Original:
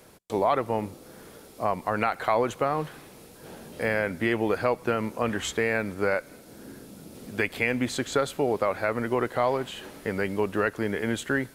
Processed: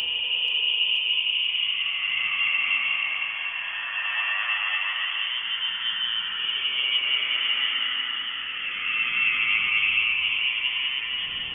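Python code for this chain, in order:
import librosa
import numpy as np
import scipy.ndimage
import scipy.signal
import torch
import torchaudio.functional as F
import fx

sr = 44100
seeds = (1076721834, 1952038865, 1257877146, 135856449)

y = fx.paulstretch(x, sr, seeds[0], factor=9.0, window_s=0.25, from_s=8.37)
y = fx.freq_invert(y, sr, carrier_hz=3300)
y = fx.echo_feedback(y, sr, ms=483, feedback_pct=59, wet_db=-15.0)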